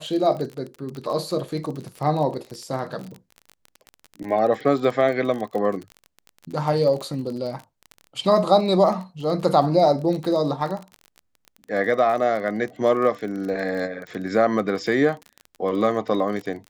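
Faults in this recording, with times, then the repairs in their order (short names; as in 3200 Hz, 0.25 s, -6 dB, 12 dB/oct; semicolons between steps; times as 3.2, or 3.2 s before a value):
crackle 29/s -29 dBFS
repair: de-click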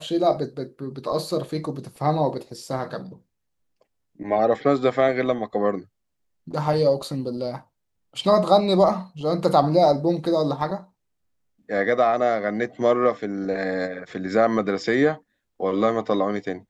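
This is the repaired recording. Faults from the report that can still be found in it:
none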